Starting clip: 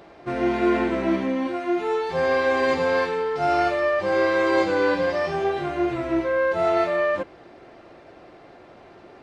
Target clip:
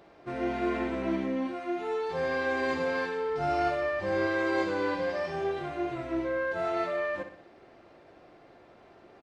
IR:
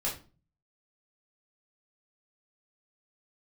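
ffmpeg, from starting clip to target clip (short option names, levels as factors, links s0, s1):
-filter_complex "[0:a]asettb=1/sr,asplit=3[s0][s1][s2];[s0]atrim=end=3.294[s3];[s1]atrim=start=3.29:end=4.27,asetpts=PTS-STARTPTS,afade=t=in:d=0.004:c=qsin,afade=t=out:st=0.976:d=0.004:c=qsin,lowshelf=f=160:g=10[s4];[s2]atrim=start=4.266[s5];[s3][s4]acrossfade=d=0.004:c1=hsin:c2=qsin[s6];[s6][s5]acrossfade=d=0.004:c1=qsin:c2=hsin,aecho=1:1:61|122|183|244|305:0.316|0.155|0.0759|0.0372|0.0182,volume=0.376"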